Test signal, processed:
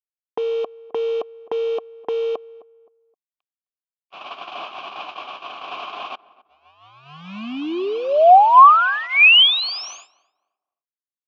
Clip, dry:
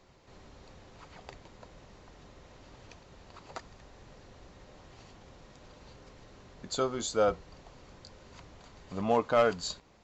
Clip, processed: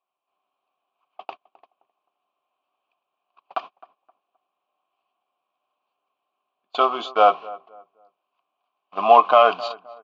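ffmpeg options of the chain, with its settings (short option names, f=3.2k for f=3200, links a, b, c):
-filter_complex "[0:a]aresample=16000,acrusher=bits=6:mode=log:mix=0:aa=0.000001,aresample=44100,asplit=3[a][b][c];[a]bandpass=f=730:t=q:w=8,volume=0dB[d];[b]bandpass=f=1.09k:t=q:w=8,volume=-6dB[e];[c]bandpass=f=2.44k:t=q:w=8,volume=-9dB[f];[d][e][f]amix=inputs=3:normalize=0,agate=range=-37dB:threshold=-55dB:ratio=16:detection=peak,highpass=260,equalizer=f=500:t=q:w=4:g=-9,equalizer=f=710:t=q:w=4:g=-5,equalizer=f=1k:t=q:w=4:g=7,equalizer=f=3.1k:t=q:w=4:g=9,lowpass=f=5k:w=0.5412,lowpass=f=5k:w=1.3066,asplit=2[g][h];[h]adelay=261,lowpass=f=1.3k:p=1,volume=-19dB,asplit=2[i][j];[j]adelay=261,lowpass=f=1.3k:p=1,volume=0.31,asplit=2[k][l];[l]adelay=261,lowpass=f=1.3k:p=1,volume=0.31[m];[g][i][k][m]amix=inputs=4:normalize=0,alimiter=level_in=26.5dB:limit=-1dB:release=50:level=0:latency=1,volume=-1dB"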